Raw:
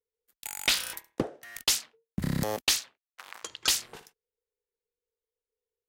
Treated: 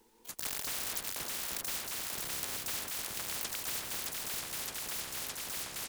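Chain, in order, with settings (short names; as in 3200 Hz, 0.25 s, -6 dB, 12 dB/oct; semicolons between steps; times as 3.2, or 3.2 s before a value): reverse; compressor 10:1, threshold -32 dBFS, peak gain reduction 13 dB; reverse; echo with dull and thin repeats by turns 0.308 s, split 910 Hz, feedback 82%, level -9.5 dB; harmoniser -12 st -2 dB, -5 st -1 dB, +12 st -1 dB; spectral compressor 10:1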